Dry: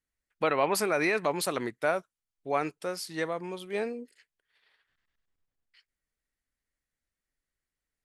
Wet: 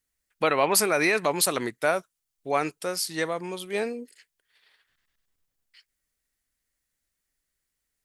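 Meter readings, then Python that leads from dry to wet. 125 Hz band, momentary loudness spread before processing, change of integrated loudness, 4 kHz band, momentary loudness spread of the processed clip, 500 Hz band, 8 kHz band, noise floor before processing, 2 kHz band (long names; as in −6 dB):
+3.0 dB, 10 LU, +4.5 dB, +8.0 dB, 11 LU, +3.0 dB, +11.0 dB, below −85 dBFS, +4.5 dB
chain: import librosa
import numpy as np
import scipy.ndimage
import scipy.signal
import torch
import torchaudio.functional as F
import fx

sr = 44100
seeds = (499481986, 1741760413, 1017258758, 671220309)

y = fx.high_shelf(x, sr, hz=4100.0, db=9.5)
y = F.gain(torch.from_numpy(y), 3.0).numpy()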